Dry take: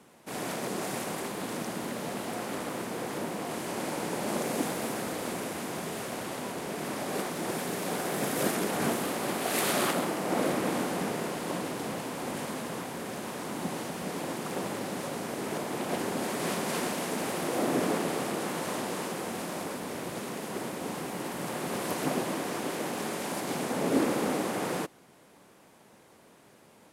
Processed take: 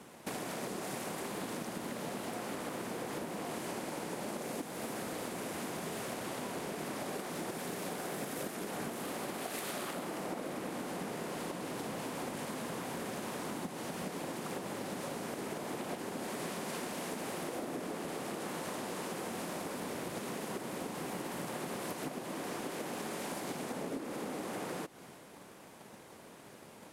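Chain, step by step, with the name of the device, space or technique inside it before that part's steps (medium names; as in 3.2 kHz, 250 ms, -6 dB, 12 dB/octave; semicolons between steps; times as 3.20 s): drum-bus smash (transient shaper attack +8 dB, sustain +3 dB; compression 12:1, threshold -38 dBFS, peak gain reduction 22.5 dB; saturation -32.5 dBFS, distortion -21 dB); trim +3 dB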